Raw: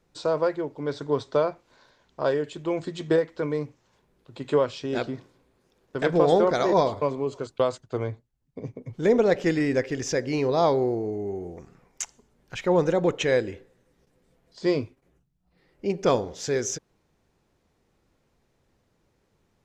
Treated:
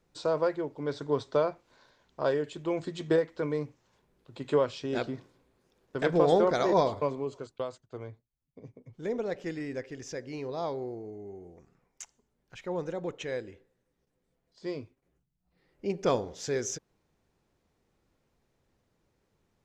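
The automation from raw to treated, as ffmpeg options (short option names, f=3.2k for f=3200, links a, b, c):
-af "volume=4dB,afade=t=out:st=6.97:d=0.7:silence=0.354813,afade=t=in:st=14.76:d=1.14:silence=0.421697"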